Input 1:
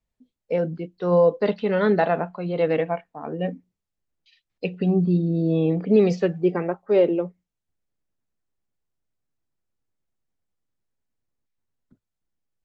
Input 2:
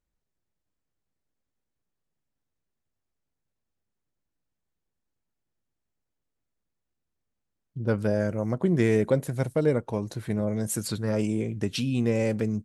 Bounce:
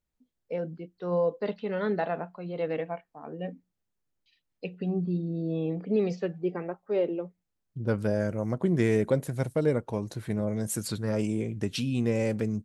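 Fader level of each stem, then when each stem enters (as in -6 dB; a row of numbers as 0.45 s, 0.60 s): -9.0 dB, -2.0 dB; 0.00 s, 0.00 s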